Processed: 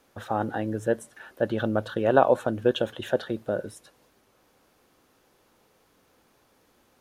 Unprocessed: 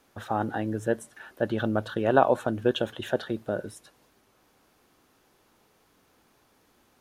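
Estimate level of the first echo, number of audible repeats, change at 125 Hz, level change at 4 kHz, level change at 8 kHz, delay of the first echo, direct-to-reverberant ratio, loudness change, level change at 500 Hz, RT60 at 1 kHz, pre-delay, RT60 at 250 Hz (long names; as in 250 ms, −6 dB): no echo audible, no echo audible, 0.0 dB, 0.0 dB, can't be measured, no echo audible, no reverb audible, +1.5 dB, +2.0 dB, no reverb audible, no reverb audible, no reverb audible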